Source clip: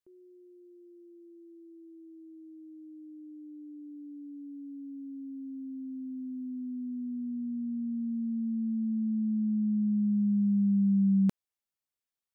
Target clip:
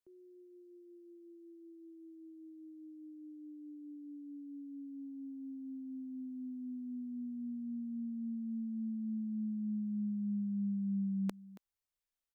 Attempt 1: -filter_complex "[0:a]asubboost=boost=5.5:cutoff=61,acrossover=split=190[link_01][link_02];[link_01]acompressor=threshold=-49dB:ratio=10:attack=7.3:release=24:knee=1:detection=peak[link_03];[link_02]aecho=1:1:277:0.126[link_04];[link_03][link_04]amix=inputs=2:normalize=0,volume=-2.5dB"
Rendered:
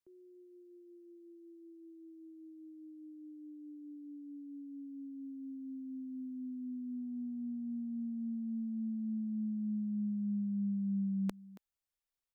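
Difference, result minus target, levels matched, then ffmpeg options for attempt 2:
downward compressor: peak gain reduction −7.5 dB
-filter_complex "[0:a]asubboost=boost=5.5:cutoff=61,acrossover=split=190[link_01][link_02];[link_01]acompressor=threshold=-57.5dB:ratio=10:attack=7.3:release=24:knee=1:detection=peak[link_03];[link_02]aecho=1:1:277:0.126[link_04];[link_03][link_04]amix=inputs=2:normalize=0,volume=-2.5dB"

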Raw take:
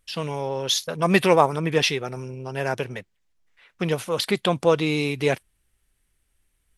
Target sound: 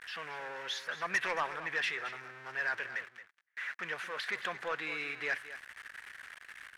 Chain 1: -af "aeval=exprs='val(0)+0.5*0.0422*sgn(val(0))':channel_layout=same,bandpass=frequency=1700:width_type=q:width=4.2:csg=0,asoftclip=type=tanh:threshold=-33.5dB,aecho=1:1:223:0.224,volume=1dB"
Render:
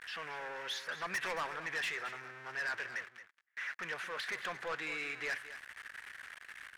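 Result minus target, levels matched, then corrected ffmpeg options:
soft clipping: distortion +6 dB
-af "aeval=exprs='val(0)+0.5*0.0422*sgn(val(0))':channel_layout=same,bandpass=frequency=1700:width_type=q:width=4.2:csg=0,asoftclip=type=tanh:threshold=-25.5dB,aecho=1:1:223:0.224,volume=1dB"

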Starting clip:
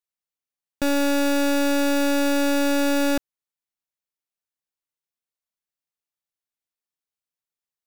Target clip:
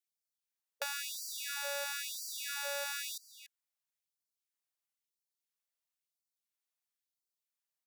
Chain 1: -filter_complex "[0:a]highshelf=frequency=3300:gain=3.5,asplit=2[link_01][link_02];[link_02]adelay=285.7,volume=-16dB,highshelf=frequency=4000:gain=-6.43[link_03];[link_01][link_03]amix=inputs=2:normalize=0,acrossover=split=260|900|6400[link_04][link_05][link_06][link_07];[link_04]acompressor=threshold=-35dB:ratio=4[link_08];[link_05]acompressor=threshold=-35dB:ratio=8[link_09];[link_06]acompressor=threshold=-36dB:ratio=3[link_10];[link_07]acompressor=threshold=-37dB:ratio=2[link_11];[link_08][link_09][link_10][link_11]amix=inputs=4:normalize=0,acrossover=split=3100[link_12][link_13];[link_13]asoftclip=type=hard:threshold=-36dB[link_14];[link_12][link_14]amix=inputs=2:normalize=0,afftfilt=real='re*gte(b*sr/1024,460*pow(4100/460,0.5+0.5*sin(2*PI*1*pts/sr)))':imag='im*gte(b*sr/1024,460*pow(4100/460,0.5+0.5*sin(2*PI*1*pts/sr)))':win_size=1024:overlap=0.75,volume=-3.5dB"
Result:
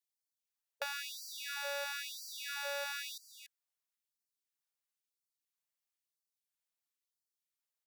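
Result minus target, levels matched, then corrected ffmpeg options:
hard clipping: distortion +11 dB
-filter_complex "[0:a]highshelf=frequency=3300:gain=3.5,asplit=2[link_01][link_02];[link_02]adelay=285.7,volume=-16dB,highshelf=frequency=4000:gain=-6.43[link_03];[link_01][link_03]amix=inputs=2:normalize=0,acrossover=split=260|900|6400[link_04][link_05][link_06][link_07];[link_04]acompressor=threshold=-35dB:ratio=4[link_08];[link_05]acompressor=threshold=-35dB:ratio=8[link_09];[link_06]acompressor=threshold=-36dB:ratio=3[link_10];[link_07]acompressor=threshold=-37dB:ratio=2[link_11];[link_08][link_09][link_10][link_11]amix=inputs=4:normalize=0,acrossover=split=3100[link_12][link_13];[link_13]asoftclip=type=hard:threshold=-28.5dB[link_14];[link_12][link_14]amix=inputs=2:normalize=0,afftfilt=real='re*gte(b*sr/1024,460*pow(4100/460,0.5+0.5*sin(2*PI*1*pts/sr)))':imag='im*gte(b*sr/1024,460*pow(4100/460,0.5+0.5*sin(2*PI*1*pts/sr)))':win_size=1024:overlap=0.75,volume=-3.5dB"

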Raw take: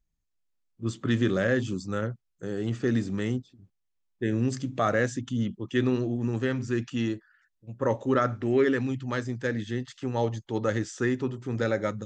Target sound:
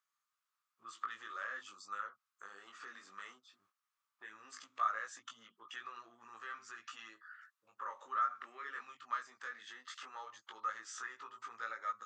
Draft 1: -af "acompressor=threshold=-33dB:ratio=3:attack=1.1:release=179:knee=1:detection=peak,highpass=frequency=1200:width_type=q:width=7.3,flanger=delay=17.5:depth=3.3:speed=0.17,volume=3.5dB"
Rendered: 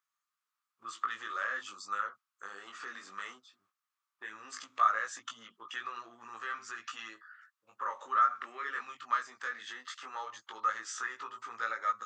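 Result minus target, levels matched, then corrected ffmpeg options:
downward compressor: peak gain reduction −7.5 dB
-af "acompressor=threshold=-44.5dB:ratio=3:attack=1.1:release=179:knee=1:detection=peak,highpass=frequency=1200:width_type=q:width=7.3,flanger=delay=17.5:depth=3.3:speed=0.17,volume=3.5dB"

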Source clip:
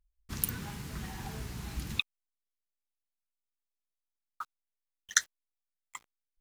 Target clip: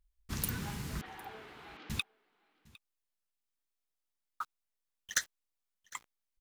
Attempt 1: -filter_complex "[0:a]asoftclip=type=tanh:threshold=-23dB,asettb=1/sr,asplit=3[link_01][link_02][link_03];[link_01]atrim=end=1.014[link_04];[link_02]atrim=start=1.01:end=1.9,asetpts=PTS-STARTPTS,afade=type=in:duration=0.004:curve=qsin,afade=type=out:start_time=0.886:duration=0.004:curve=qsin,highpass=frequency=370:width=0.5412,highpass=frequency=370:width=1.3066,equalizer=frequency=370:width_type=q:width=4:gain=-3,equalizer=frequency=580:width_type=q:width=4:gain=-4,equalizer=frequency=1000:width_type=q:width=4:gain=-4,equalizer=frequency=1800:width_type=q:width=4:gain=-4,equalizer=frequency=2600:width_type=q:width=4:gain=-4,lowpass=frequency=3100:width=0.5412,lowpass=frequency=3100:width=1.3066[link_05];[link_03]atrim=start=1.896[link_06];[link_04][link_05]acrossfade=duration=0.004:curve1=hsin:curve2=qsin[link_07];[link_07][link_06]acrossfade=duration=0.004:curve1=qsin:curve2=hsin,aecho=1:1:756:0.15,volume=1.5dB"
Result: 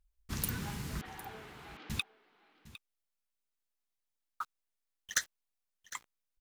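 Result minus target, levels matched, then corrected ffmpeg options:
echo-to-direct +6.5 dB
-filter_complex "[0:a]asoftclip=type=tanh:threshold=-23dB,asettb=1/sr,asplit=3[link_01][link_02][link_03];[link_01]atrim=end=1.014[link_04];[link_02]atrim=start=1.01:end=1.9,asetpts=PTS-STARTPTS,afade=type=in:duration=0.004:curve=qsin,afade=type=out:start_time=0.886:duration=0.004:curve=qsin,highpass=frequency=370:width=0.5412,highpass=frequency=370:width=1.3066,equalizer=frequency=370:width_type=q:width=4:gain=-3,equalizer=frequency=580:width_type=q:width=4:gain=-4,equalizer=frequency=1000:width_type=q:width=4:gain=-4,equalizer=frequency=1800:width_type=q:width=4:gain=-4,equalizer=frequency=2600:width_type=q:width=4:gain=-4,lowpass=frequency=3100:width=0.5412,lowpass=frequency=3100:width=1.3066[link_05];[link_03]atrim=start=1.896[link_06];[link_04][link_05]acrossfade=duration=0.004:curve1=hsin:curve2=qsin[link_07];[link_07][link_06]acrossfade=duration=0.004:curve1=qsin:curve2=hsin,aecho=1:1:756:0.0708,volume=1.5dB"

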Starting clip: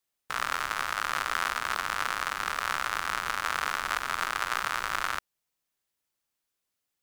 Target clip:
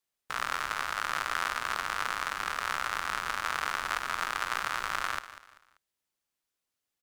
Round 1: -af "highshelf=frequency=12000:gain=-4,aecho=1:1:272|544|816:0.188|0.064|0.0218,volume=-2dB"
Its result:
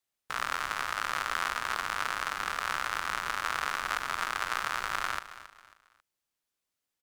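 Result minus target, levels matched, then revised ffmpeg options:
echo 78 ms late
-af "highshelf=frequency=12000:gain=-4,aecho=1:1:194|388|582:0.188|0.064|0.0218,volume=-2dB"

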